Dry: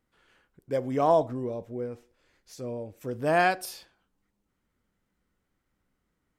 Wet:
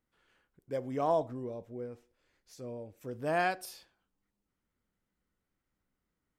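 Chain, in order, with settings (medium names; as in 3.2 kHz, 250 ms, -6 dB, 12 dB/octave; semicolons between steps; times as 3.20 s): trim -7 dB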